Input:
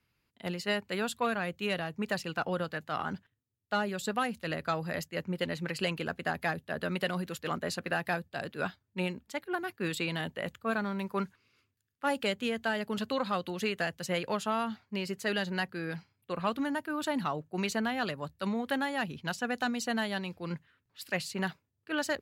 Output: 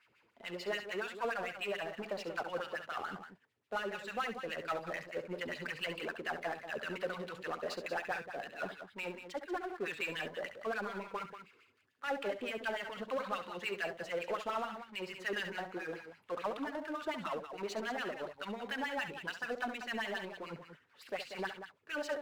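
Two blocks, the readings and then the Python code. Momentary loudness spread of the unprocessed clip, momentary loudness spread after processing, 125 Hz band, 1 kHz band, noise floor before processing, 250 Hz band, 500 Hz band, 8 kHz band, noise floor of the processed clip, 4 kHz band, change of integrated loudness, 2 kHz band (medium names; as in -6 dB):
5 LU, 6 LU, -15.0 dB, -5.5 dB, -80 dBFS, -11.0 dB, -4.5 dB, -11.0 dB, -71 dBFS, -6.5 dB, -6.0 dB, -4.5 dB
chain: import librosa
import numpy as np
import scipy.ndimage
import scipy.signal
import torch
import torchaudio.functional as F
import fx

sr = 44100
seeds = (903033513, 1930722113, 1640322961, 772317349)

y = fx.filter_lfo_bandpass(x, sr, shape='sine', hz=6.9, low_hz=400.0, high_hz=2800.0, q=2.4)
y = fx.power_curve(y, sr, exponent=0.7)
y = fx.echo_multitap(y, sr, ms=(68, 187), db=(-10.5, -10.0))
y = y * librosa.db_to_amplitude(-2.5)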